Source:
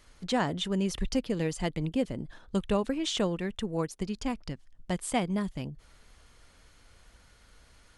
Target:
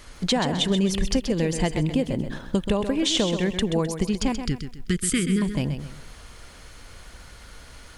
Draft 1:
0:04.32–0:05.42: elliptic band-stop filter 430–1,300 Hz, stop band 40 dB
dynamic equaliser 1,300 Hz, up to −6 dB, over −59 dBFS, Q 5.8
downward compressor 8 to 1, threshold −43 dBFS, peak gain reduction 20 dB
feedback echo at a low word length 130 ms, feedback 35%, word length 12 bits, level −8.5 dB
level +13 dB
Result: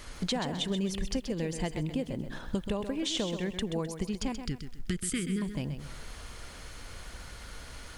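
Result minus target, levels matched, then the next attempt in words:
downward compressor: peak gain reduction +9 dB
0:04.32–0:05.42: elliptic band-stop filter 430–1,300 Hz, stop band 40 dB
dynamic equaliser 1,300 Hz, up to −6 dB, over −59 dBFS, Q 5.8
downward compressor 8 to 1, threshold −32.5 dBFS, peak gain reduction 11 dB
feedback echo at a low word length 130 ms, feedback 35%, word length 12 bits, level −8.5 dB
level +13 dB

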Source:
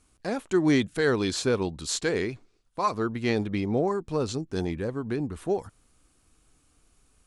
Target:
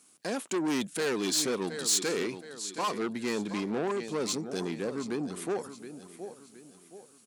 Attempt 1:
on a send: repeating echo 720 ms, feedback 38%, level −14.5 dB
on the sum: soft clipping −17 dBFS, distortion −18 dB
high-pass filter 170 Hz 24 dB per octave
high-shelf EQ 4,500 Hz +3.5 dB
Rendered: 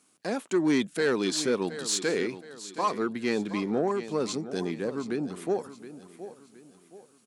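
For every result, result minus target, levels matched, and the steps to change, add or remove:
soft clipping: distortion −10 dB; 8,000 Hz band −5.5 dB
change: soft clipping −26.5 dBFS, distortion −8 dB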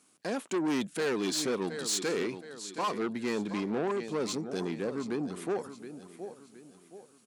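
8,000 Hz band −4.0 dB
change: high-shelf EQ 4,500 Hz +11 dB

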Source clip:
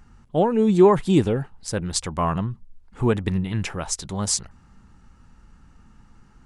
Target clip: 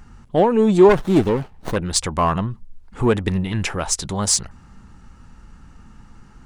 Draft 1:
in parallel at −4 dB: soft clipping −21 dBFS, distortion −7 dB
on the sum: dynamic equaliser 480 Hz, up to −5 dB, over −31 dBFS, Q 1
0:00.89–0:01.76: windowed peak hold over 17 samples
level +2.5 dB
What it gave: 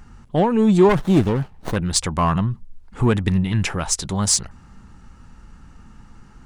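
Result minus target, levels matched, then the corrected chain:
125 Hz band +4.0 dB
in parallel at −4 dB: soft clipping −21 dBFS, distortion −7 dB
on the sum: dynamic equaliser 140 Hz, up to −5 dB, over −31 dBFS, Q 1
0:00.89–0:01.76: windowed peak hold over 17 samples
level +2.5 dB

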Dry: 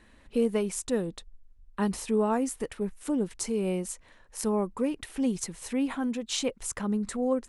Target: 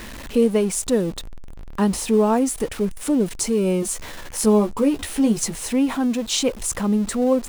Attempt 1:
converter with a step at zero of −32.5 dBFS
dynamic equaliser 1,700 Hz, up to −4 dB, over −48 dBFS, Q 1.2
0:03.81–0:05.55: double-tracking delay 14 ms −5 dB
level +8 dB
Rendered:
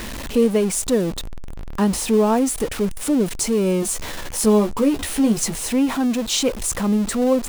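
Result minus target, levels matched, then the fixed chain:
converter with a step at zero: distortion +6 dB
converter with a step at zero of −39 dBFS
dynamic equaliser 1,700 Hz, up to −4 dB, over −48 dBFS, Q 1.2
0:03.81–0:05.55: double-tracking delay 14 ms −5 dB
level +8 dB

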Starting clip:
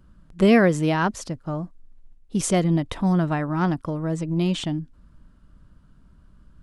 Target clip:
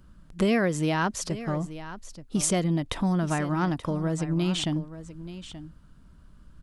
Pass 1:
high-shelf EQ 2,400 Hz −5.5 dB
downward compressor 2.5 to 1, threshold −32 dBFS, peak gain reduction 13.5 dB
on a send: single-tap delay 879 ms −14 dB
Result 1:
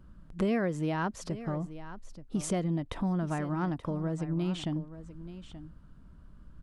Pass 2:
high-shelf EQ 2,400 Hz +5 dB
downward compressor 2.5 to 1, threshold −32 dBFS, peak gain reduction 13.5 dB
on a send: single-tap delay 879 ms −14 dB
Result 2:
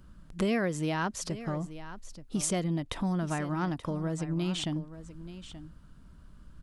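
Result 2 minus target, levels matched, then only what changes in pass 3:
downward compressor: peak gain reduction +5 dB
change: downward compressor 2.5 to 1, threshold −23.5 dBFS, peak gain reduction 8.5 dB

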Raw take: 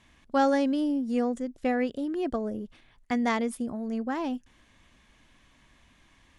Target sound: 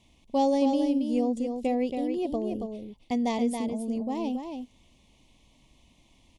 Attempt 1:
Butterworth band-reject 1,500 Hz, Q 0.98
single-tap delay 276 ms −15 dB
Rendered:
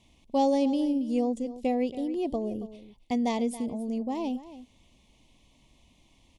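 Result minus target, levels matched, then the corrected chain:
echo-to-direct −9 dB
Butterworth band-reject 1,500 Hz, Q 0.98
single-tap delay 276 ms −6 dB

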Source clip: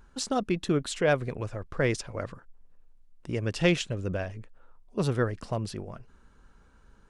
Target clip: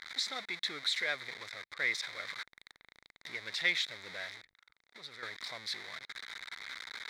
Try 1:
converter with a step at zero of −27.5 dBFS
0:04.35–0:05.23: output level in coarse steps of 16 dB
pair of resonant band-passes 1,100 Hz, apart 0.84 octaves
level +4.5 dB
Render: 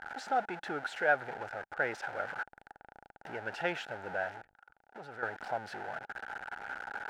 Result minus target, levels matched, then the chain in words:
1,000 Hz band +13.5 dB
converter with a step at zero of −27.5 dBFS
0:04.35–0:05.23: output level in coarse steps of 16 dB
pair of resonant band-passes 2,800 Hz, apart 0.84 octaves
level +4.5 dB

